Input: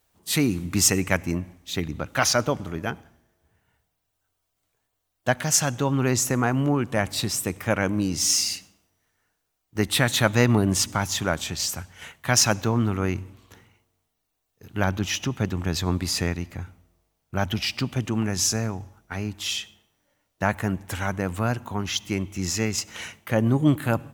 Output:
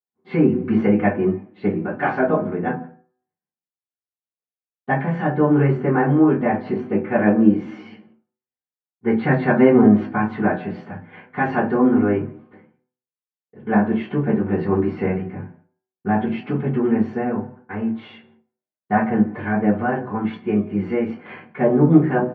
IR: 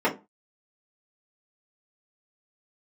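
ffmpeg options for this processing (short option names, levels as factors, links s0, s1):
-filter_complex "[0:a]agate=range=0.0224:threshold=0.00355:ratio=3:detection=peak,acrossover=split=1300[s0][s1];[s1]asoftclip=type=tanh:threshold=0.126[s2];[s0][s2]amix=inputs=2:normalize=0,asetrate=47628,aresample=44100,lowpass=f=2700:w=0.5412,lowpass=f=2700:w=1.3066,equalizer=f=270:w=0.44:g=3,bandreject=f=125.3:t=h:w=4,bandreject=f=250.6:t=h:w=4,bandreject=f=375.9:t=h:w=4,bandreject=f=501.2:t=h:w=4,bandreject=f=626.5:t=h:w=4,bandreject=f=751.8:t=h:w=4,bandreject=f=877.1:t=h:w=4,bandreject=f=1002.4:t=h:w=4,bandreject=f=1127.7:t=h:w=4,bandreject=f=1253:t=h:w=4,bandreject=f=1378.3:t=h:w=4,bandreject=f=1503.6:t=h:w=4,bandreject=f=1628.9:t=h:w=4,bandreject=f=1754.2:t=h:w=4,asplit=2[s3][s4];[s4]adelay=170,highpass=300,lowpass=3400,asoftclip=type=hard:threshold=0.211,volume=0.0501[s5];[s3][s5]amix=inputs=2:normalize=0[s6];[1:a]atrim=start_sample=2205,asetrate=36603,aresample=44100[s7];[s6][s7]afir=irnorm=-1:irlink=0,flanger=delay=7.6:depth=6.5:regen=-38:speed=0.11:shape=sinusoidal,highpass=96,volume=0.316"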